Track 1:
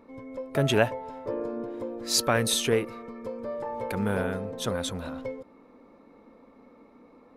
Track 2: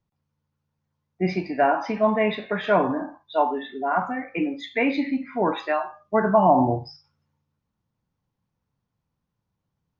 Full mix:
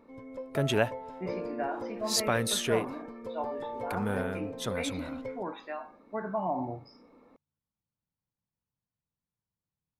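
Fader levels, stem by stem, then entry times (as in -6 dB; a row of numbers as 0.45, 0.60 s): -4.0, -14.5 dB; 0.00, 0.00 s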